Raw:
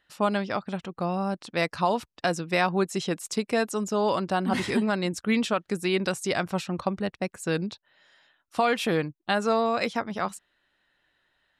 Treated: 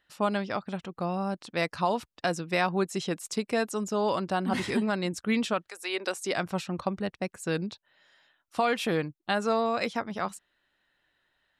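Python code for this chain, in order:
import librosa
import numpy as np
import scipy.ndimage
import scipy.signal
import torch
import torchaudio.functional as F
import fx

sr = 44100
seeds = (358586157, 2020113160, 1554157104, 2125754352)

y = fx.highpass(x, sr, hz=fx.line((5.67, 710.0), (6.36, 190.0)), slope=24, at=(5.67, 6.36), fade=0.02)
y = F.gain(torch.from_numpy(y), -2.5).numpy()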